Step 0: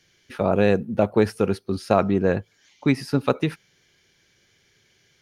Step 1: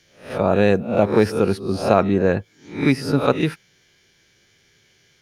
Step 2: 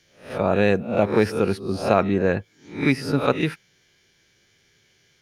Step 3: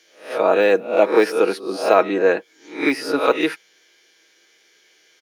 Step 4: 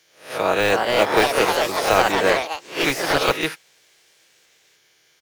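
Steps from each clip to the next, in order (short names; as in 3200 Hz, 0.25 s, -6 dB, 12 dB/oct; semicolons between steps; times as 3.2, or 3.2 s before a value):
spectral swells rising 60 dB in 0.41 s; gain +2 dB
dynamic EQ 2200 Hz, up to +4 dB, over -35 dBFS, Q 1.2; gain -3 dB
HPF 320 Hz 24 dB/oct; de-esser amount 80%; comb 6.3 ms, depth 42%; gain +5 dB
spectral contrast lowered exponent 0.67; echoes that change speed 0.392 s, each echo +3 st, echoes 3; resonant low shelf 150 Hz +13 dB, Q 1.5; gain -3 dB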